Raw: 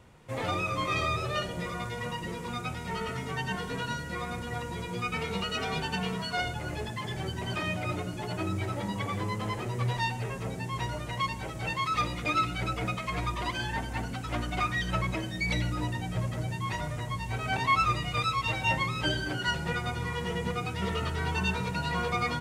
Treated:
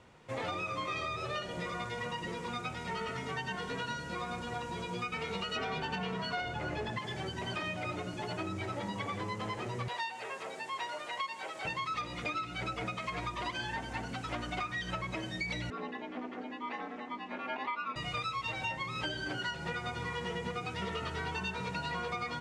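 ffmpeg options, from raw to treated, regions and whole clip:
ffmpeg -i in.wav -filter_complex "[0:a]asettb=1/sr,asplit=3[link_01][link_02][link_03];[link_01]atrim=end=4.004[link_04];[link_02]atrim=start=4:end=5.01,asetpts=PTS-STARTPTS,afade=type=in:duration=0.004:curve=qsin,afade=type=out:start_time=1.006:duration=0.004:curve=qsin,bandreject=frequency=2000:width=7,asplit=2[link_05][link_06];[link_06]adelay=22,volume=-13dB[link_07];[link_05][link_07]amix=inputs=2:normalize=0,atrim=end_sample=44541[link_08];[link_03]atrim=start=5.006[link_09];[link_04][link_08]acrossfade=duration=0.004:curve1=hsin:curve2=qsin[link_10];[link_10][link_09]acrossfade=duration=0.004:curve1=qsin:curve2=hsin,asettb=1/sr,asplit=3[link_11][link_12][link_13];[link_11]atrim=end=5.564[link_14];[link_12]atrim=start=5.56:end=6.99,asetpts=PTS-STARTPTS,afade=type=in:duration=0.004:curve=qsin,afade=type=out:start_time=1.426:duration=0.004:curve=qsin,equalizer=frequency=11000:width_type=o:width=2.1:gain=-9.5,aeval=exprs='0.112*sin(PI/2*1.41*val(0)/0.112)':channel_layout=same[link_15];[link_13]atrim=start=6.986[link_16];[link_14][link_15]acrossfade=duration=0.004:curve1=hsin:curve2=qsin[link_17];[link_17][link_16]acrossfade=duration=0.004:curve1=qsin:curve2=hsin,asettb=1/sr,asplit=3[link_18][link_19][link_20];[link_18]atrim=end=9.884[link_21];[link_19]atrim=start=9.88:end=11.65,asetpts=PTS-STARTPTS,afade=type=in:duration=0.004:curve=qsin,afade=type=out:start_time=1.766:duration=0.004:curve=qsin,highpass=520,equalizer=frequency=5900:width_type=o:width=0.24:gain=-4,acompressor=mode=upward:threshold=-38dB:ratio=2.5:attack=3.2:release=140:knee=2.83:detection=peak[link_22];[link_20]atrim=start=11.646[link_23];[link_21][link_22]acrossfade=duration=0.004:curve1=hsin:curve2=qsin[link_24];[link_24][link_23]acrossfade=duration=0.004:curve1=qsin:curve2=hsin,asettb=1/sr,asplit=3[link_25][link_26][link_27];[link_25]atrim=end=15.704[link_28];[link_26]atrim=start=15.7:end=17.96,asetpts=PTS-STARTPTS,afade=type=in:duration=0.004:curve=qsin,afade=type=out:start_time=2.256:duration=0.004:curve=qsin,aeval=exprs='val(0)*sin(2*PI*130*n/s)':channel_layout=same,highpass=260,lowpass=2500[link_29];[link_27]atrim=start=17.956[link_30];[link_28][link_29]acrossfade=duration=0.004:curve1=hsin:curve2=qsin[link_31];[link_31][link_30]acrossfade=duration=0.004:curve1=qsin:curve2=hsin,lowpass=7000,lowshelf=frequency=150:gain=-10,acompressor=threshold=-33dB:ratio=10" out.wav

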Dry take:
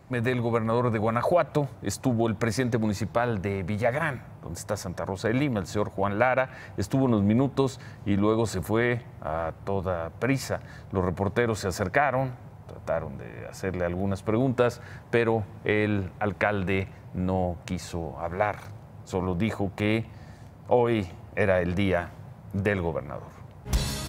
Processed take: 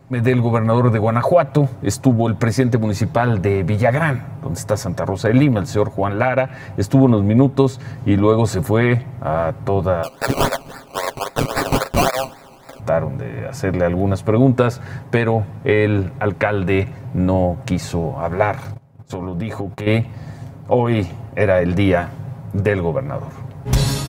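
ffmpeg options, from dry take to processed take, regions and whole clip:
ffmpeg -i in.wav -filter_complex "[0:a]asettb=1/sr,asplit=3[link_01][link_02][link_03];[link_01]atrim=end=10.034[link_04];[link_02]atrim=start=10.03:end=12.8,asetpts=PTS-STARTPTS,afade=type=in:duration=0.004:curve=qsin,afade=type=out:start_time=2.766:duration=0.004:curve=qsin,highpass=frequency=540:width=0.5412,highpass=frequency=540:width=1.3066,aemphasis=mode=production:type=riaa,acrusher=samples=20:mix=1:aa=0.000001:lfo=1:lforange=12:lforate=3.7[link_05];[link_03]atrim=start=12.796[link_06];[link_04][link_05]acrossfade=duration=0.004:curve1=hsin:curve2=qsin[link_07];[link_07][link_06]acrossfade=duration=0.004:curve1=qsin:curve2=hsin,asettb=1/sr,asplit=3[link_08][link_09][link_10];[link_08]atrim=end=18.744[link_11];[link_09]atrim=start=18.74:end=19.87,asetpts=PTS-STARTPTS,afade=type=in:duration=0.004:curve=qsin,afade=type=out:start_time=1.126:duration=0.004:curve=qsin,agate=range=-18dB:threshold=-42dB:ratio=16:release=100:detection=peak,acompressor=threshold=-34dB:ratio=3:attack=3.2:release=140:knee=1:detection=peak[link_12];[link_10]atrim=start=19.866[link_13];[link_11][link_12]acrossfade=duration=0.004:curve1=hsin:curve2=qsin[link_14];[link_14][link_13]acrossfade=duration=0.004:curve1=qsin:curve2=hsin,equalizer=frequency=150:width=0.31:gain=5,aecho=1:1:7.4:0.5,dynaudnorm=framelen=120:gausssize=3:maxgain=7.5dB" out.wav

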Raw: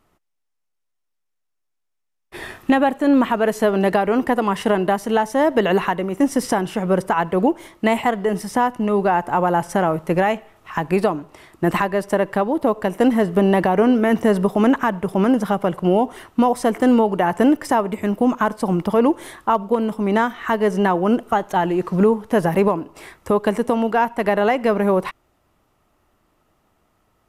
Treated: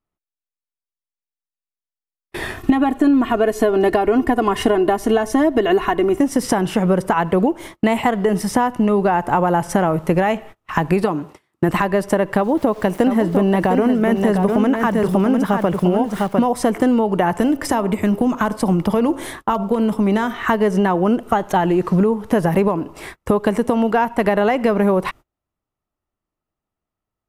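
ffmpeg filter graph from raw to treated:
ffmpeg -i in.wav -filter_complex "[0:a]asettb=1/sr,asplit=3[link_01][link_02][link_03];[link_01]atrim=end=2.574[link_04];[link_02]atrim=start=2.57:end=6.19,asetpts=PTS-STARTPTS,afade=type=in:duration=0.004:curve=qsin,afade=type=out:start_time=3.616:duration=0.004:curve=qsin,lowshelf=frequency=350:gain=6.5,aecho=1:1:2.8:0.78,atrim=end_sample=159642[link_05];[link_03]atrim=start=6.186[link_06];[link_04][link_05]acrossfade=duration=0.004:curve1=hsin:curve2=qsin[link_07];[link_07][link_06]acrossfade=duration=0.004:curve1=qsin:curve2=hsin,asettb=1/sr,asplit=3[link_08][link_09][link_10];[link_08]atrim=end=11.034[link_11];[link_09]atrim=start=11.03:end=11.69,asetpts=PTS-STARTPTS,afade=type=in:duration=0.004:curve=qsin,afade=type=out:start_time=0.656:duration=0.004:curve=qsin,highpass=110,bandreject=frequency=650:width=11[link_12];[link_10]atrim=start=11.686[link_13];[link_11][link_12]acrossfade=duration=0.004:curve1=hsin:curve2=qsin[link_14];[link_14][link_13]acrossfade=duration=0.004:curve1=qsin:curve2=hsin,asettb=1/sr,asplit=3[link_15][link_16][link_17];[link_15]atrim=end=12.364[link_18];[link_16]atrim=start=12.36:end=16.47,asetpts=PTS-STARTPTS,afade=type=in:duration=0.004:curve=qsin,afade=type=out:start_time=4.106:duration=0.004:curve=qsin,aeval=exprs='val(0)*gte(abs(val(0)),0.00794)':channel_layout=same,aecho=1:1:703:0.501,atrim=end_sample=181251[link_19];[link_17]atrim=start=16.466[link_20];[link_18][link_19]acrossfade=duration=0.004:curve1=hsin:curve2=qsin[link_21];[link_21][link_20]acrossfade=duration=0.004:curve1=qsin:curve2=hsin,asettb=1/sr,asplit=3[link_22][link_23][link_24];[link_22]atrim=end=17.384[link_25];[link_23]atrim=start=17.38:end=20.43,asetpts=PTS-STARTPTS,afade=type=in:duration=0.004:curve=qsin,afade=type=out:start_time=3.046:duration=0.004:curve=qsin,acrossover=split=170|3000[link_26][link_27][link_28];[link_27]acompressor=threshold=-22dB:ratio=2:attack=3.2:release=140:knee=2.83:detection=peak[link_29];[link_26][link_29][link_28]amix=inputs=3:normalize=0,bandreject=frequency=135.8:width_type=h:width=4,bandreject=frequency=271.6:width_type=h:width=4,bandreject=frequency=407.4:width_type=h:width=4,bandreject=frequency=543.2:width_type=h:width=4,bandreject=frequency=679:width_type=h:width=4,bandreject=frequency=814.8:width_type=h:width=4,bandreject=frequency=950.6:width_type=h:width=4,bandreject=frequency=1086.4:width_type=h:width=4,bandreject=frequency=1222.2:width_type=h:width=4,bandreject=frequency=1358:width_type=h:width=4[link_30];[link_24]atrim=start=20.426[link_31];[link_25][link_30]acrossfade=duration=0.004:curve1=hsin:curve2=qsin[link_32];[link_32][link_31]acrossfade=duration=0.004:curve1=qsin:curve2=hsin,agate=range=-29dB:threshold=-40dB:ratio=16:detection=peak,lowshelf=frequency=210:gain=5,acompressor=threshold=-19dB:ratio=6,volume=6dB" out.wav

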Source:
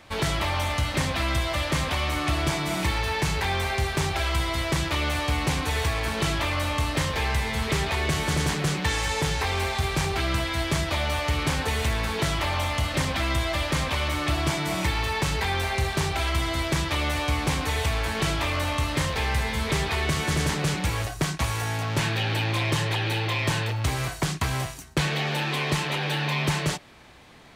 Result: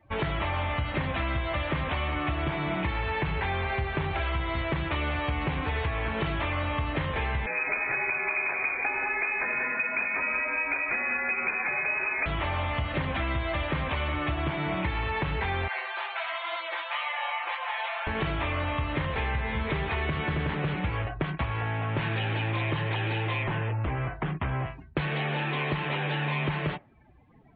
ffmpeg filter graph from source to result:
ffmpeg -i in.wav -filter_complex "[0:a]asettb=1/sr,asplit=3[link_01][link_02][link_03];[link_01]atrim=end=7.464[link_04];[link_02]atrim=start=7.46:end=12.26,asetpts=PTS-STARTPTS,afade=type=in:duration=0.004:curve=qsin,afade=type=out:start_time=4.796:duration=0.004:curve=qsin,aecho=1:1:179:0.422,atrim=end_sample=211680,lowpass=frequency=2200:width_type=q:width=0.5098,lowpass=frequency=2200:width_type=q:width=0.6013,lowpass=frequency=2200:width_type=q:width=0.9,lowpass=frequency=2200:width_type=q:width=2.563,afreqshift=-2600[link_05];[link_03]atrim=start=12.256[link_06];[link_04][link_05]acrossfade=duration=0.004:curve1=hsin:curve2=qsin[link_07];[link_07][link_06]acrossfade=duration=0.004:curve1=qsin:curve2=hsin,asettb=1/sr,asplit=3[link_08][link_09][link_10];[link_08]atrim=end=15.684[link_11];[link_09]atrim=start=15.68:end=18.07,asetpts=PTS-STARTPTS,afade=type=in:duration=0.004:curve=qsin,afade=type=out:start_time=2.386:duration=0.004:curve=qsin,highpass=frequency=680:width=0.5412,highpass=frequency=680:width=1.3066,flanger=delay=15.5:depth=7.3:speed=2.1,aecho=1:1:5.8:0.83,atrim=end_sample=105399[link_12];[link_10]atrim=start=18.066[link_13];[link_11][link_12]acrossfade=duration=0.004:curve1=hsin:curve2=qsin[link_14];[link_14][link_13]acrossfade=duration=0.004:curve1=qsin:curve2=hsin,asettb=1/sr,asplit=3[link_15][link_16][link_17];[link_15]atrim=end=23.434[link_18];[link_16]atrim=start=23.43:end=24.65,asetpts=PTS-STARTPTS,afade=type=in:duration=0.004:curve=qsin,afade=type=out:start_time=1.216:duration=0.004:curve=qsin,aemphasis=mode=reproduction:type=75kf,aeval=exprs='0.0794*(abs(mod(val(0)/0.0794+3,4)-2)-1)':channel_layout=same[link_19];[link_17]atrim=start=24.646[link_20];[link_18][link_19]acrossfade=duration=0.004:curve1=hsin:curve2=qsin[link_21];[link_21][link_20]acrossfade=duration=0.004:curve1=qsin:curve2=hsin,lowpass=frequency=3000:width=0.5412,lowpass=frequency=3000:width=1.3066,afftdn=noise_reduction=23:noise_floor=-44,acompressor=threshold=-25dB:ratio=6" out.wav

